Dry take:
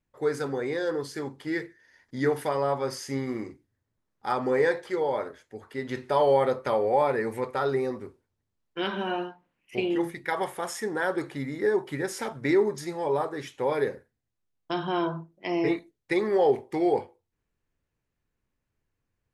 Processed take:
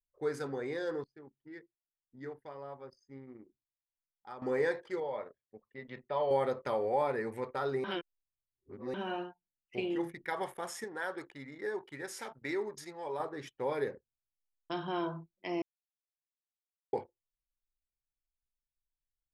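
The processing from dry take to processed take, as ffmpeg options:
-filter_complex "[0:a]asettb=1/sr,asplit=3[s0][s1][s2];[s0]atrim=end=5.004[s3];[s1]atrim=start=5:end=6.31,asetpts=PTS-STARTPTS,afade=t=in:d=0.004:c=qsin,afade=t=out:st=1.306:d=0.004:c=qsin,highpass=120,equalizer=f=120:t=q:w=4:g=-4,equalizer=f=270:t=q:w=4:g=-8,equalizer=f=380:t=q:w=4:g=-8,equalizer=f=830:t=q:w=4:g=-4,equalizer=f=1500:t=q:w=4:g=-8,equalizer=f=3000:t=q:w=4:g=-3,lowpass=f=3700:w=0.5412,lowpass=f=3700:w=1.3066[s4];[s2]atrim=start=6.306[s5];[s3][s4]acrossfade=d=0.004:c1=hsin:c2=qsin[s6];[s6][s5]acrossfade=d=0.004:c1=qsin:c2=hsin,asettb=1/sr,asplit=3[s7][s8][s9];[s7]atrim=end=10.844[s10];[s8]atrim=start=10.84:end=13.2,asetpts=PTS-STARTPTS,afade=t=in:d=0.004:c=qsin,afade=t=out:st=2.356:d=0.004:c=qsin,lowshelf=f=480:g=-10[s11];[s9]atrim=start=13.196[s12];[s10][s11]acrossfade=d=0.004:c1=hsin:c2=qsin[s13];[s13][s12]acrossfade=d=0.004:c1=qsin:c2=hsin,asplit=7[s14][s15][s16][s17][s18][s19][s20];[s14]atrim=end=1.042[s21];[s15]atrim=start=1.038:end=4.422,asetpts=PTS-STARTPTS,volume=0.266[s22];[s16]atrim=start=4.418:end=7.842[s23];[s17]atrim=start=7.838:end=8.942,asetpts=PTS-STARTPTS,areverse[s24];[s18]atrim=start=8.938:end=15.62,asetpts=PTS-STARTPTS,afade=t=out:st=6.678:d=0.004:c=hsin[s25];[s19]atrim=start=15.62:end=16.93,asetpts=PTS-STARTPTS,volume=0[s26];[s20]atrim=start=16.93,asetpts=PTS-STARTPTS,afade=t=in:d=0.004:c=hsin[s27];[s21][s22]acrossfade=d=0.004:c1=hsin:c2=hsin[s28];[s28][s23]acrossfade=d=0.004:c1=hsin:c2=hsin[s29];[s29][s24]acrossfade=d=0.004:c1=hsin:c2=hsin[s30];[s25][s26][s27]concat=n=3:v=0:a=1[s31];[s30][s31]acrossfade=d=0.004:c1=hsin:c2=hsin,anlmdn=0.0631,volume=0.422"

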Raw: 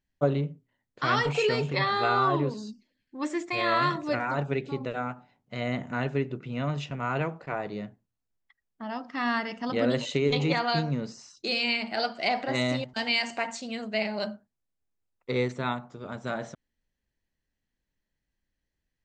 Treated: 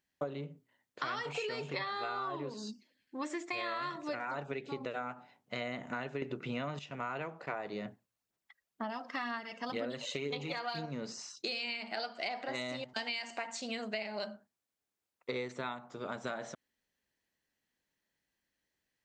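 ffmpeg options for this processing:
-filter_complex "[0:a]asettb=1/sr,asplit=3[s0][s1][s2];[s0]atrim=end=7.854[s3];[s1]atrim=start=7.85:end=10.86,asetpts=PTS-STARTPTS,afade=t=in:d=0.004:c=qsin,afade=t=out:st=3.006:d=0.004:c=qsin,aphaser=in_gain=1:out_gain=1:delay=1.9:decay=0.42:speed=2:type=sinusoidal[s4];[s2]atrim=start=10.856[s5];[s3][s4]acrossfade=d=0.004:c1=hsin:c2=qsin[s6];[s6][s5]acrossfade=d=0.004:c1=qsin:c2=hsin,asplit=3[s7][s8][s9];[s7]atrim=end=6.222[s10];[s8]atrim=start=6.218:end=6.792,asetpts=PTS-STARTPTS,volume=3.55[s11];[s9]atrim=start=6.788[s12];[s10][s11]acrossfade=d=0.004:c1=hsin:c2=hsin[s13];[s13][s12]acrossfade=d=0.004:c1=hsin:c2=hsin,highpass=f=400:p=1,acompressor=threshold=0.0126:ratio=12,volume=1.5"

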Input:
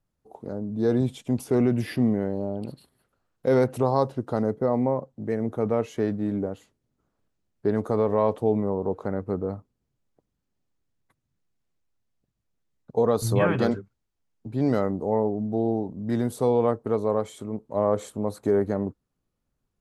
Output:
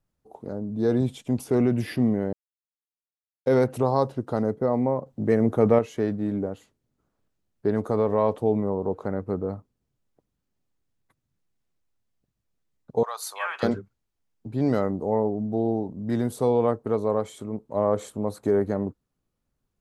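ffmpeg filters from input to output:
-filter_complex "[0:a]asettb=1/sr,asplit=3[s0][s1][s2];[s0]atrim=end=5.064[s3];[s1]atrim=start=5.06:end=5.79,asetpts=PTS-STARTPTS,afade=t=in:d=0.004:c=qsin,afade=t=out:st=0.726:d=0.004:c=qsin,acontrast=66[s4];[s2]atrim=start=5.786[s5];[s3][s4]acrossfade=d=0.004:c1=hsin:c2=qsin[s6];[s6][s5]acrossfade=d=0.004:c1=qsin:c2=hsin,asettb=1/sr,asplit=3[s7][s8][s9];[s7]atrim=end=13.034[s10];[s8]atrim=start=13.03:end=13.63,asetpts=PTS-STARTPTS,afade=t=in:d=0.004:c=qsin,afade=t=out:st=0.596:d=0.004:c=qsin,highpass=f=910:w=0.5412,highpass=f=910:w=1.3066[s11];[s9]atrim=start=13.626[s12];[s10][s11]acrossfade=d=0.004:c1=hsin:c2=qsin[s13];[s13][s12]acrossfade=d=0.004:c1=qsin:c2=hsin,asplit=3[s14][s15][s16];[s14]atrim=end=2.33,asetpts=PTS-STARTPTS,afade=t=out:st=2.326:d=0.004:c=hsin[s17];[s15]atrim=start=2.33:end=3.46,asetpts=PTS-STARTPTS,volume=0[s18];[s16]atrim=start=3.46,asetpts=PTS-STARTPTS,afade=t=in:d=0.004:c=hsin[s19];[s17][s18][s19]concat=n=3:v=0:a=1"

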